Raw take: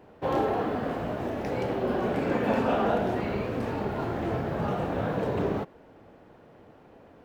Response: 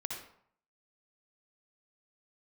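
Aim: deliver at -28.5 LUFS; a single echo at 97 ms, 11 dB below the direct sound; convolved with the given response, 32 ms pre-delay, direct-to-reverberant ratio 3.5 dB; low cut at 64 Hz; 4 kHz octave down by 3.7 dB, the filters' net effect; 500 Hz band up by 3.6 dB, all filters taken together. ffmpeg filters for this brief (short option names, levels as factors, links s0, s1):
-filter_complex "[0:a]highpass=64,equalizer=f=500:t=o:g=4.5,equalizer=f=4000:t=o:g=-5.5,aecho=1:1:97:0.282,asplit=2[s0][s1];[1:a]atrim=start_sample=2205,adelay=32[s2];[s1][s2]afir=irnorm=-1:irlink=0,volume=0.596[s3];[s0][s3]amix=inputs=2:normalize=0,volume=0.668"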